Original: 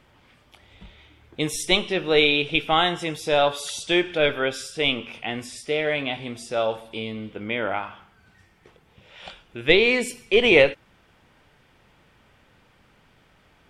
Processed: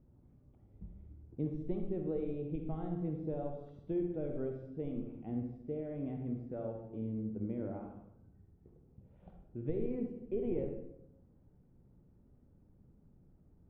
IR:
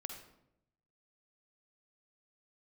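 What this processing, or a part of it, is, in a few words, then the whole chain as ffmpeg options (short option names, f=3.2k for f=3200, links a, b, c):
television next door: -filter_complex "[0:a]asettb=1/sr,asplit=3[a][b][c];[a]atrim=end=6.074[d];[b]atrim=start=6.07:end=6.91,asetpts=PTS-STARTPTS,afade=t=in:d=0.004:c=qsin,afade=t=out:st=0.836:d=0.004:c=qsin,equalizer=f=1.8k:w=2.6:g=8.5[e];[c]atrim=start=6.906[f];[d][e]acrossfade=d=0.004:c1=hsin:c2=qsin[g];[g][f]acrossfade=d=0.004:c1=qsin:c2=hsin,acompressor=threshold=-22dB:ratio=4,lowpass=260[h];[1:a]atrim=start_sample=2205[i];[h][i]afir=irnorm=-1:irlink=0,volume=1dB"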